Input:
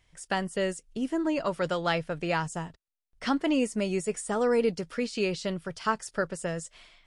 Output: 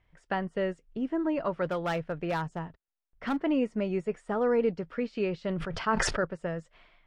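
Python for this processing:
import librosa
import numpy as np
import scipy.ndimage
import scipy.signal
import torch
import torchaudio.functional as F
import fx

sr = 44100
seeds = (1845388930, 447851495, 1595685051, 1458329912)

y = scipy.signal.sosfilt(scipy.signal.butter(2, 2000.0, 'lowpass', fs=sr, output='sos'), x)
y = fx.clip_hard(y, sr, threshold_db=-24.0, at=(1.67, 3.38))
y = fx.sustainer(y, sr, db_per_s=26.0, at=(5.41, 6.25))
y = F.gain(torch.from_numpy(y), -1.0).numpy()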